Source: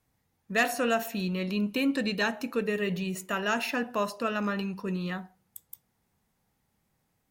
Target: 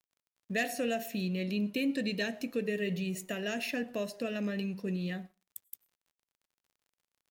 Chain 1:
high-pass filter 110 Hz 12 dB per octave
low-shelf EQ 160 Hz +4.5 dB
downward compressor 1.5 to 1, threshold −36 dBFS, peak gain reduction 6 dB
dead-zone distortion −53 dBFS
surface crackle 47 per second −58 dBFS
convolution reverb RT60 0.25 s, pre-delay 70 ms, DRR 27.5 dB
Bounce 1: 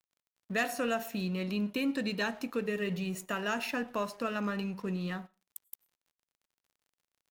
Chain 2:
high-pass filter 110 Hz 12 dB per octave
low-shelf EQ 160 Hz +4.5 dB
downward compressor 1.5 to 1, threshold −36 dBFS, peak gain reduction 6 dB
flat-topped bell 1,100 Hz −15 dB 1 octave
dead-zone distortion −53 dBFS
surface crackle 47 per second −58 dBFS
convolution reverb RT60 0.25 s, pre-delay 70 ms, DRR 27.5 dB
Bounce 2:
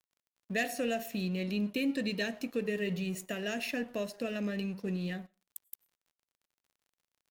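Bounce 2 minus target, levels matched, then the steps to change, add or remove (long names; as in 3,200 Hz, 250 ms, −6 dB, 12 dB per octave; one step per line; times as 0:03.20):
dead-zone distortion: distortion +8 dB
change: dead-zone distortion −61 dBFS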